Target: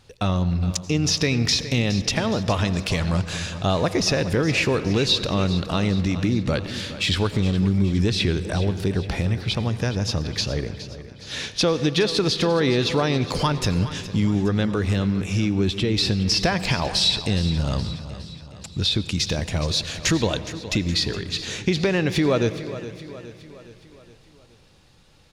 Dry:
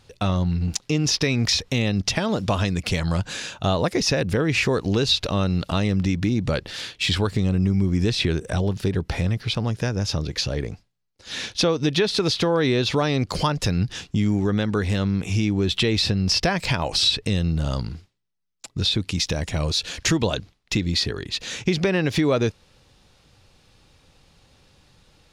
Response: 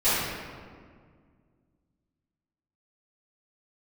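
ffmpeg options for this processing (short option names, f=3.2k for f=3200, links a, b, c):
-filter_complex "[0:a]asettb=1/sr,asplit=3[a][b][c];[a]atrim=end=14.744[d];[b]atrim=start=14.74:end=15.97,asetpts=PTS-STARTPTS,afade=t=in:d=0.004:c=qsin,afade=t=out:st=1.226:d=0.004:c=qsin,acrossover=split=480[e][f];[f]acompressor=threshold=-27dB:ratio=6[g];[e][g]amix=inputs=2:normalize=0[h];[c]atrim=start=15.966[i];[d][h]acrossfade=d=0.004:c1=hsin:c2=qsin[j];[j][i]acrossfade=d=0.004:c1=qsin:c2=hsin,aecho=1:1:416|832|1248|1664|2080:0.2|0.106|0.056|0.0297|0.0157,asplit=2[k][l];[1:a]atrim=start_sample=2205,adelay=78[m];[l][m]afir=irnorm=-1:irlink=0,volume=-30.5dB[n];[k][n]amix=inputs=2:normalize=0"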